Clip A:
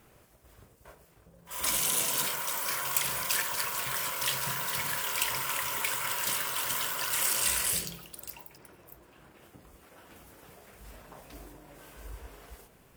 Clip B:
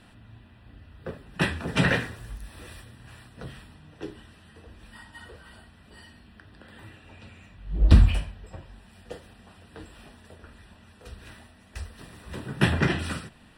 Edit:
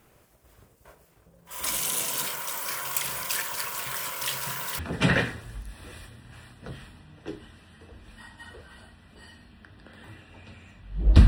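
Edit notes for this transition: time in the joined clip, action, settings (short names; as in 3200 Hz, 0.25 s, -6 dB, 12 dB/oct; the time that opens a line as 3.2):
clip A
4.79 switch to clip B from 1.54 s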